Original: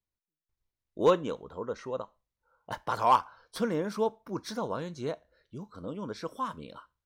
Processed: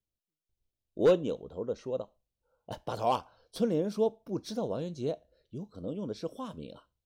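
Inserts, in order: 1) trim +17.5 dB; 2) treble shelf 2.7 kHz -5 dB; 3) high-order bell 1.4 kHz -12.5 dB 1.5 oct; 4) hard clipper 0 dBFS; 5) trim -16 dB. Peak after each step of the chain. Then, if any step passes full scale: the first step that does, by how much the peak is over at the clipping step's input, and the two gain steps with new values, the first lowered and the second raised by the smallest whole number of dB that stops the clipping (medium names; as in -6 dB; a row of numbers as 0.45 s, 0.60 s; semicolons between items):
+4.5 dBFS, +4.5 dBFS, +4.5 dBFS, 0.0 dBFS, -16.0 dBFS; step 1, 4.5 dB; step 1 +12.5 dB, step 5 -11 dB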